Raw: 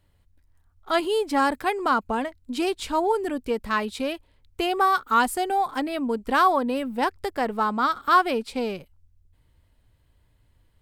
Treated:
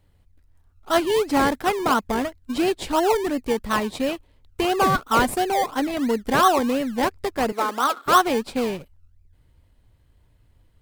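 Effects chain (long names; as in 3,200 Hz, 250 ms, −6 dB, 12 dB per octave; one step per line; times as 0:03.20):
in parallel at −4 dB: sample-and-hold swept by an LFO 26×, swing 60% 2.9 Hz
0:07.52–0:08.06: on the sum: high-pass filter 310 Hz 24 dB per octave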